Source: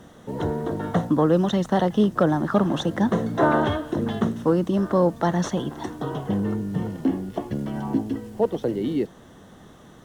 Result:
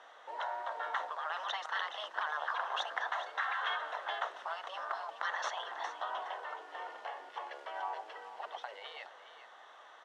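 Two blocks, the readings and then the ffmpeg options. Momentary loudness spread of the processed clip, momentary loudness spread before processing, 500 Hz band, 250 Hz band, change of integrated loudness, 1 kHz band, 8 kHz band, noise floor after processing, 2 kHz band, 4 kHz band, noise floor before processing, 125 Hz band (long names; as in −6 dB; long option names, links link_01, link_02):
11 LU, 10 LU, −22.0 dB, below −40 dB, −15.0 dB, −8.0 dB, −12.5 dB, −56 dBFS, −2.5 dB, −4.0 dB, −48 dBFS, below −40 dB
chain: -af "lowpass=3200,afftfilt=real='re*lt(hypot(re,im),0.158)':imag='im*lt(hypot(re,im),0.158)':win_size=1024:overlap=0.75,highpass=frequency=710:width=0.5412,highpass=frequency=710:width=1.3066,aecho=1:1:419:0.251"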